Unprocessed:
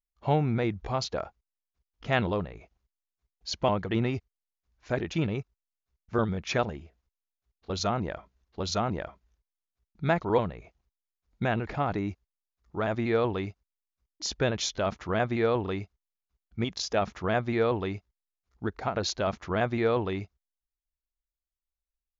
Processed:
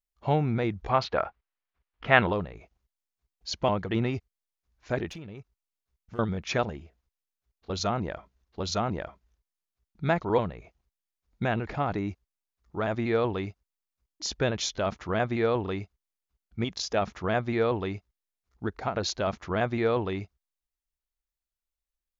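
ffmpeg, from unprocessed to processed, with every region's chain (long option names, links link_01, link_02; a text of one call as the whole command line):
ffmpeg -i in.wav -filter_complex "[0:a]asettb=1/sr,asplit=3[link_01][link_02][link_03];[link_01]atrim=end=0.894[link_04];[link_02]atrim=start=0.89:end=2.33,asetpts=PTS-STARTPTS,afade=type=in:duration=0.004:curve=qsin,afade=type=out:start_time=1.436:duration=0.004:curve=qsin,lowpass=3200,equalizer=frequency=1600:width_type=o:width=2.9:gain=9.5[link_05];[link_03]atrim=start=2.326[link_06];[link_04][link_05]acrossfade=duration=0.004:curve1=hsin:curve2=qsin[link_07];[link_07][link_06]acrossfade=duration=0.004:curve1=qsin:curve2=hsin,asettb=1/sr,asplit=3[link_08][link_09][link_10];[link_08]atrim=end=5.104[link_11];[link_09]atrim=start=5.1:end=6.19,asetpts=PTS-STARTPTS,afade=type=in:duration=0.004:curve=qsin,afade=type=out:start_time=1.086:duration=0.004:curve=qsin,acompressor=threshold=-37dB:ratio=10:attack=3.2:release=140:knee=1:detection=peak,aeval=exprs='clip(val(0),-1,0.0112)':channel_layout=same[link_12];[link_10]atrim=start=6.186[link_13];[link_11][link_12]acrossfade=duration=0.004:curve1=hsin:curve2=qsin[link_14];[link_14][link_13]acrossfade=duration=0.004:curve1=qsin:curve2=hsin" out.wav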